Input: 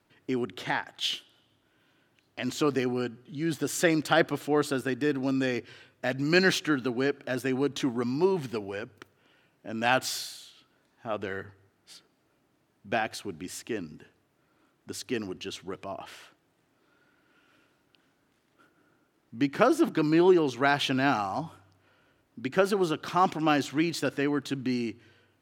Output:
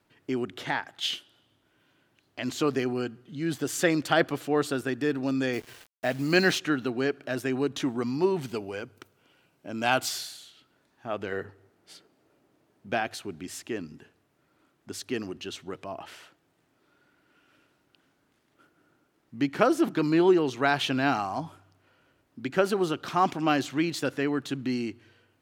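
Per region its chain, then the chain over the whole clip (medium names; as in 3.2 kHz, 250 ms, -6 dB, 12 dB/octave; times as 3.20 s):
5.53–6.55 s: peaking EQ 690 Hz +4 dB 0.38 oct + word length cut 8-bit, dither none
8.41–10.09 s: treble shelf 6 kHz +4.5 dB + band-stop 1.8 kHz, Q 8.6
11.32–12.90 s: high-pass 42 Hz + peaking EQ 450 Hz +6 dB 1.7 oct
whole clip: none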